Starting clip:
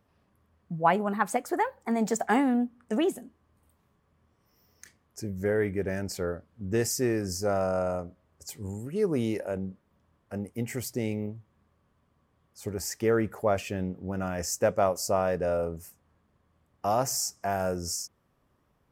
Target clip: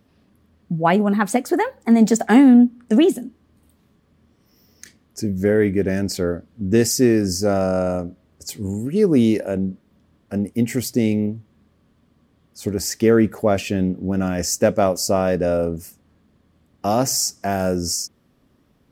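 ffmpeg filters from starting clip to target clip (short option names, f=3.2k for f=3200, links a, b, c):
-af "equalizer=f=250:t=o:w=1:g=8,equalizer=f=1k:t=o:w=1:g=-5,equalizer=f=4k:t=o:w=1:g=5,volume=7.5dB"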